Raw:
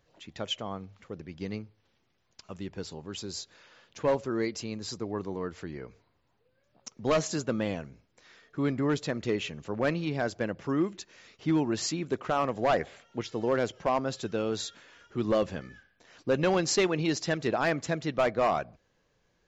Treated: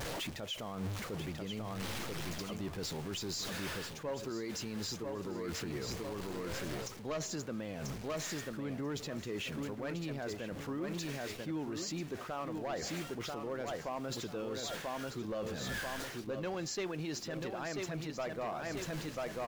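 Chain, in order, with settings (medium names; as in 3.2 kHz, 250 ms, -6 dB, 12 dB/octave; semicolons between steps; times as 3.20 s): jump at every zero crossing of -39.5 dBFS; feedback delay 989 ms, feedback 28%, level -7 dB; reverse; compression 12:1, threshold -39 dBFS, peak gain reduction 20 dB; reverse; peak limiter -36.5 dBFS, peak gain reduction 7.5 dB; trim +5.5 dB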